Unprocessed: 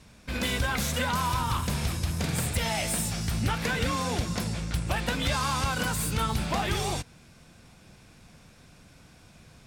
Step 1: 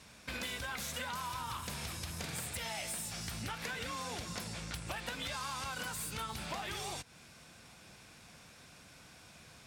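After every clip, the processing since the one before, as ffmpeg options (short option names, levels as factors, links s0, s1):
-af "highpass=46,lowshelf=f=450:g=-9.5,acompressor=threshold=0.00891:ratio=4,volume=1.19"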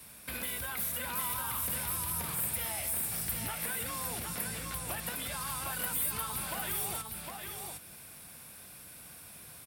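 -filter_complex "[0:a]acrossover=split=140|1300|2800[s0][s1][s2][s3];[s3]alimiter=level_in=5.62:limit=0.0631:level=0:latency=1:release=72,volume=0.178[s4];[s0][s1][s2][s4]amix=inputs=4:normalize=0,aexciter=amount=8.7:drive=6.5:freq=9300,aecho=1:1:758:0.596"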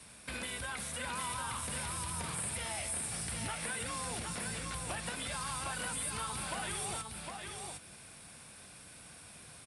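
-af "aresample=22050,aresample=44100"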